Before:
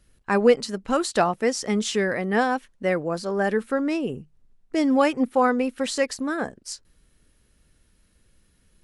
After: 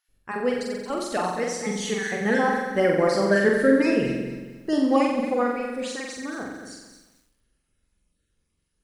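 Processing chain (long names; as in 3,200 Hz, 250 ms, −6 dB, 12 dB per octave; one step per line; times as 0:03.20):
time-frequency cells dropped at random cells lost 26%
source passing by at 0:03.39, 10 m/s, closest 7.2 metres
on a send: flutter between parallel walls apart 7.7 metres, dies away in 0.86 s
on the sum: feedback echo at a low word length 225 ms, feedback 35%, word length 10 bits, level −9 dB
level +4 dB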